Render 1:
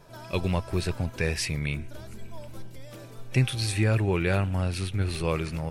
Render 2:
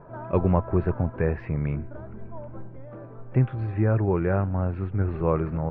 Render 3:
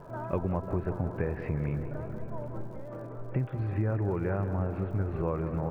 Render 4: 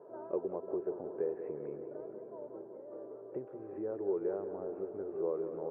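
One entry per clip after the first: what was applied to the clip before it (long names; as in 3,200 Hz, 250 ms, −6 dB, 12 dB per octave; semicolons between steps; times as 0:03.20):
speech leveller 2 s; low-pass filter 1,400 Hz 24 dB per octave; low-shelf EQ 67 Hz −6 dB; level +3.5 dB
downward compressor 4 to 1, threshold −28 dBFS, peak gain reduction 10.5 dB; surface crackle 140 per second −52 dBFS; tape delay 185 ms, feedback 88%, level −8.5 dB, low-pass 2,100 Hz
four-pole ladder band-pass 460 Hz, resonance 60%; level +4.5 dB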